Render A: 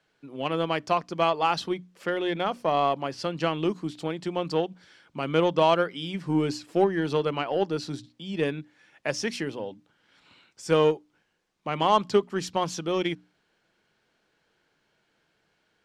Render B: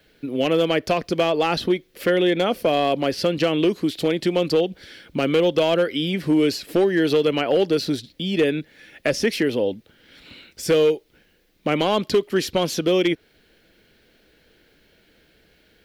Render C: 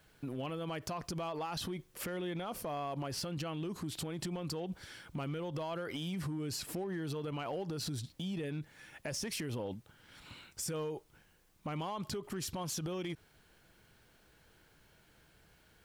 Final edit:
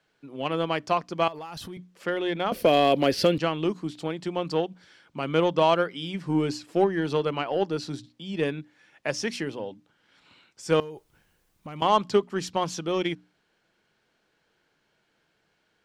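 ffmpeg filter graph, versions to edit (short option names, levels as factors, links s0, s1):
-filter_complex "[2:a]asplit=2[s0][s1];[0:a]asplit=4[s2][s3][s4][s5];[s2]atrim=end=1.282[s6];[s0]atrim=start=1.278:end=1.772[s7];[s3]atrim=start=1.768:end=2.522[s8];[1:a]atrim=start=2.518:end=3.382[s9];[s4]atrim=start=3.378:end=10.802[s10];[s1]atrim=start=10.798:end=11.822[s11];[s5]atrim=start=11.818[s12];[s6][s7]acrossfade=d=0.004:c1=hsin:c2=hsin[s13];[s13][s8]acrossfade=d=0.004:c1=hsin:c2=hsin[s14];[s14][s9]acrossfade=d=0.004:c1=hsin:c2=hsin[s15];[s15][s10]acrossfade=d=0.004:c1=hsin:c2=hsin[s16];[s16][s11]acrossfade=d=0.004:c1=hsin:c2=hsin[s17];[s17][s12]acrossfade=d=0.004:c1=hsin:c2=hsin"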